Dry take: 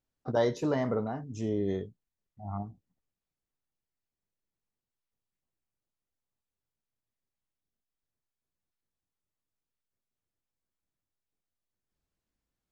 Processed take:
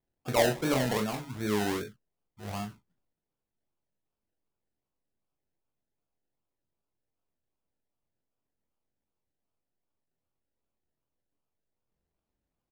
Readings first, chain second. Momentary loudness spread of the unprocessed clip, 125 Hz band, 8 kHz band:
15 LU, +0.5 dB, no reading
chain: decimation with a swept rate 31×, swing 60% 2.6 Hz; early reflections 24 ms -6.5 dB, 38 ms -8.5 dB

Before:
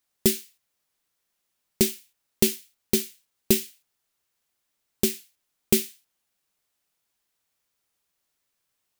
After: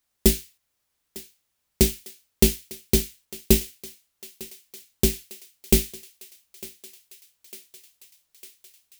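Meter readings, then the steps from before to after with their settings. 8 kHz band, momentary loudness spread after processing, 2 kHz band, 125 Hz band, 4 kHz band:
+1.5 dB, 20 LU, +1.5 dB, +8.0 dB, +1.5 dB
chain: octave divider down 2 oct, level +2 dB; on a send: thinning echo 902 ms, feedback 71%, high-pass 540 Hz, level -17.5 dB; on the sum: trim +1.5 dB

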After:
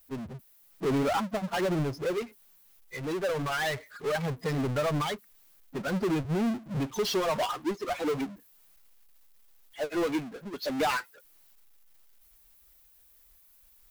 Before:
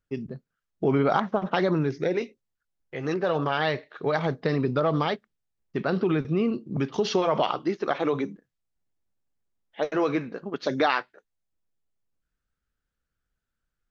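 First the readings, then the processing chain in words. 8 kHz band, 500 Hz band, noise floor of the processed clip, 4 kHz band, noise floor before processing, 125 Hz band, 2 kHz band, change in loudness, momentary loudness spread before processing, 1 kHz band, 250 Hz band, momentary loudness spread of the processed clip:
no reading, -5.0 dB, -60 dBFS, -1.0 dB, -84 dBFS, -3.5 dB, -3.0 dB, -4.0 dB, 11 LU, -4.5 dB, -4.0 dB, 10 LU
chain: expander on every frequency bin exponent 2; power-law waveshaper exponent 0.35; upward expansion 1.5:1, over -30 dBFS; trim -7 dB

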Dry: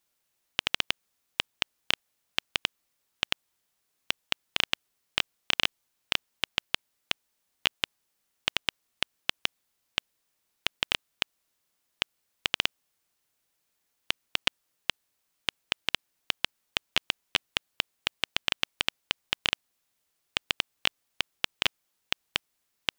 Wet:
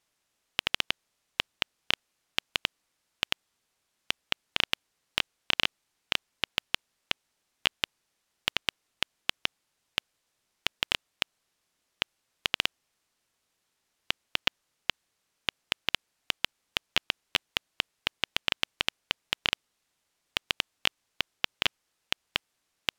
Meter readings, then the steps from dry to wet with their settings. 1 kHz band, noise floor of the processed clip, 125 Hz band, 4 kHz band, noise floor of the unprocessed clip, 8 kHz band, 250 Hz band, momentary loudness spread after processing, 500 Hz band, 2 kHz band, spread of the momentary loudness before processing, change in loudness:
0.0 dB, -79 dBFS, 0.0 dB, -0.5 dB, -78 dBFS, -2.0 dB, 0.0 dB, 6 LU, 0.0 dB, -0.5 dB, 6 LU, -0.5 dB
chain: decimation joined by straight lines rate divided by 2×

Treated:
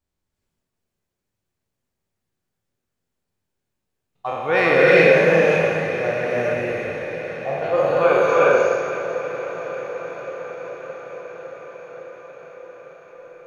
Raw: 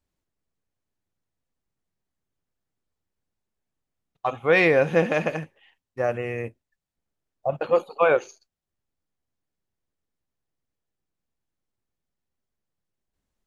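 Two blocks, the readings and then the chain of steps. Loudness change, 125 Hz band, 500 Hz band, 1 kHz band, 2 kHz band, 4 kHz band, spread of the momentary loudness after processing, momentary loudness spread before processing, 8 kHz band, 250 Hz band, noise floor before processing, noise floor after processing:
+4.5 dB, +4.5 dB, +7.5 dB, +6.5 dB, +7.5 dB, +7.0 dB, 22 LU, 14 LU, no reading, +5.0 dB, under -85 dBFS, -81 dBFS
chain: spectral sustain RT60 1.52 s; echo that smears into a reverb 483 ms, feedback 78%, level -12.5 dB; gated-style reverb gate 410 ms rising, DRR -5 dB; trim -4 dB

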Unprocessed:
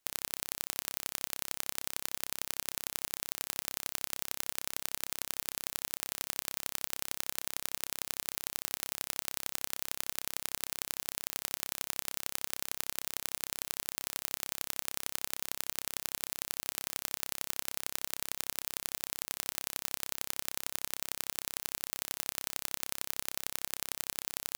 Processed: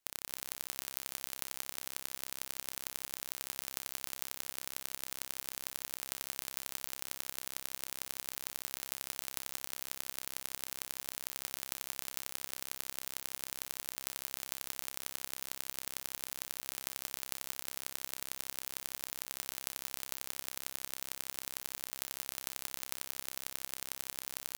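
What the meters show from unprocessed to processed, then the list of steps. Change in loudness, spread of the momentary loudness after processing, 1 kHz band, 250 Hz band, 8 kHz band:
-3.5 dB, 1 LU, -3.5 dB, -3.5 dB, -3.5 dB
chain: delay 227 ms -12 dB; trim -4 dB

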